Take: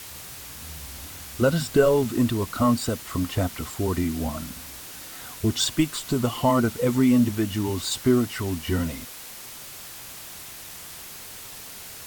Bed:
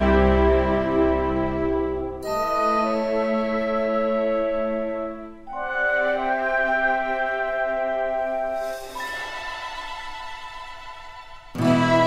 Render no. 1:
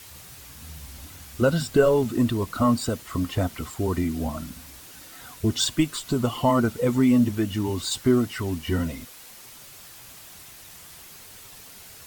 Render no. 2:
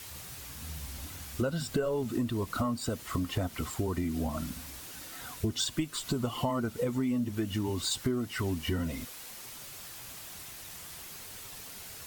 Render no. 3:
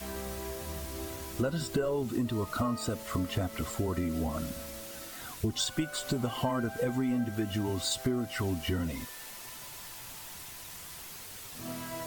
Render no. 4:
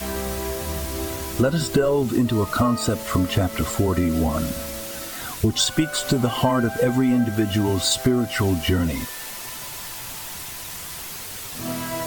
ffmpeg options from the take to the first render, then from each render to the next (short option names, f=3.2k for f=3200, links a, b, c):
-af "afftdn=nr=6:nf=-41"
-af "acompressor=threshold=-28dB:ratio=6"
-filter_complex "[1:a]volume=-22.5dB[a];[0:a][a]amix=inputs=2:normalize=0"
-af "volume=11dB"